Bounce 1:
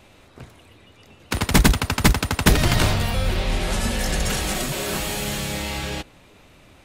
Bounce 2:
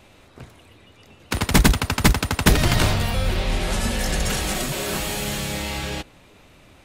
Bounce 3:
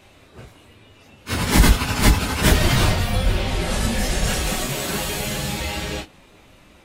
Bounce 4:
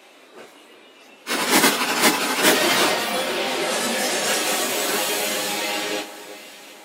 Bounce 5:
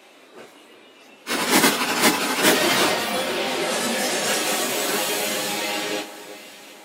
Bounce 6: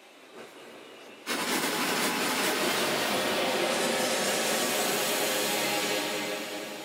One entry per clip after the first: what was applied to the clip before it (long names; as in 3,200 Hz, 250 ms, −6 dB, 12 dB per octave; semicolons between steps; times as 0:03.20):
no processing that can be heard
random phases in long frames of 100 ms; level +1 dB
high-pass filter 280 Hz 24 dB per octave; delay that swaps between a low-pass and a high-pass 360 ms, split 1,800 Hz, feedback 67%, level −13.5 dB; level +3.5 dB
low-shelf EQ 140 Hz +8 dB; level −1 dB
downward compressor, threshold −24 dBFS, peak gain reduction 11.5 dB; convolution reverb RT60 3.9 s, pre-delay 177 ms, DRR 0.5 dB; level −3 dB